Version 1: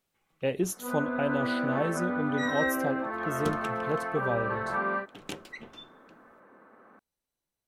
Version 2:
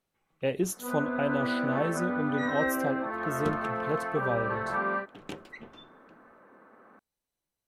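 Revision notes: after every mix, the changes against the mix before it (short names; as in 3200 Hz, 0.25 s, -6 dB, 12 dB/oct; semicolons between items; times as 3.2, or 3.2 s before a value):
second sound: add high shelf 3200 Hz -10 dB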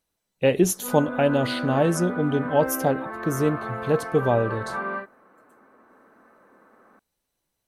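speech +9.5 dB; second sound: muted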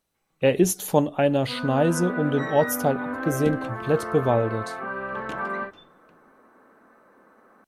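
first sound: entry +0.65 s; second sound: unmuted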